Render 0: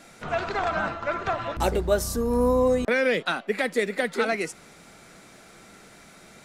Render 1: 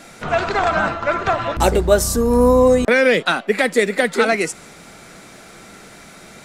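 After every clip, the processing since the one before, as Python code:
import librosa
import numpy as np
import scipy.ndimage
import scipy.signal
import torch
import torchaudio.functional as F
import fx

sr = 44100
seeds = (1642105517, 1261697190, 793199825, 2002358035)

y = fx.dynamic_eq(x, sr, hz=7800.0, q=2.3, threshold_db=-52.0, ratio=4.0, max_db=4)
y = y * librosa.db_to_amplitude(8.5)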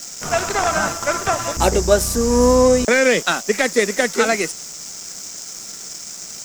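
y = fx.dmg_noise_band(x, sr, seeds[0], low_hz=5000.0, high_hz=7800.0, level_db=-28.0)
y = np.sign(y) * np.maximum(np.abs(y) - 10.0 ** (-31.0 / 20.0), 0.0)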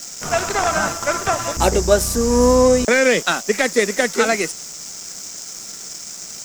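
y = x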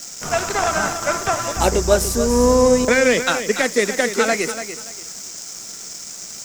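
y = fx.echo_feedback(x, sr, ms=289, feedback_pct=23, wet_db=-10.5)
y = y * librosa.db_to_amplitude(-1.0)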